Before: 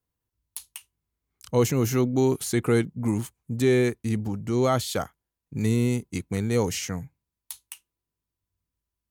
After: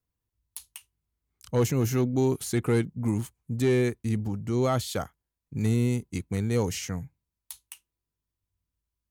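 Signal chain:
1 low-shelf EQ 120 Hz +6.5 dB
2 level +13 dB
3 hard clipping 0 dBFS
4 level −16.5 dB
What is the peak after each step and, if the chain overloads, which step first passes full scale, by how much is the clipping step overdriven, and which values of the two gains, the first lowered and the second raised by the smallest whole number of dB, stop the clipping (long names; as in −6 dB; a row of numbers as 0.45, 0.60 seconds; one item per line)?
−9.0, +4.0, 0.0, −16.5 dBFS
step 2, 4.0 dB
step 2 +9 dB, step 4 −12.5 dB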